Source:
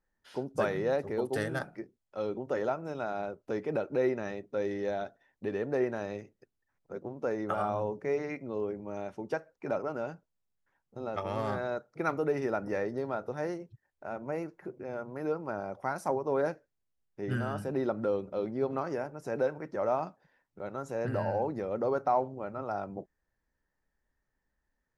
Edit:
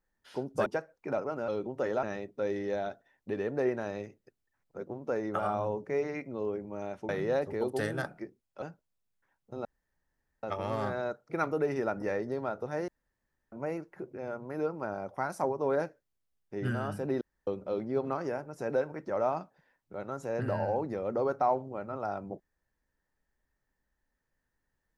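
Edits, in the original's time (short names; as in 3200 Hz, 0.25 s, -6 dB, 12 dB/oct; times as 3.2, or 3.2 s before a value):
0.66–2.19 swap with 9.24–10.06
2.74–4.18 cut
11.09 insert room tone 0.78 s
13.54–14.18 room tone
17.87–18.13 room tone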